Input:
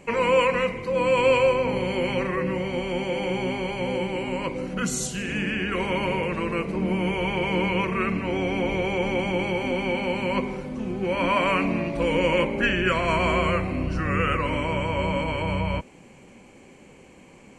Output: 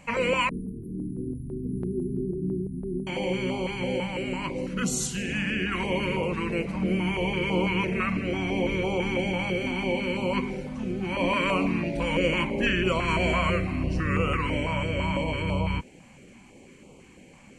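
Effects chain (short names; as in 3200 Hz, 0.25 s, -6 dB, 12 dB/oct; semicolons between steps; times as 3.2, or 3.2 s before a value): 0.49–3.07 brick-wall FIR band-stop 450–9200 Hz; stepped notch 6 Hz 400–1700 Hz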